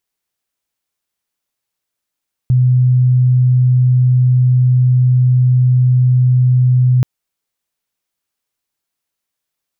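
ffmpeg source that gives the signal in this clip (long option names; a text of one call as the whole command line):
ffmpeg -f lavfi -i "aevalsrc='0.422*sin(2*PI*126*t)':duration=4.53:sample_rate=44100" out.wav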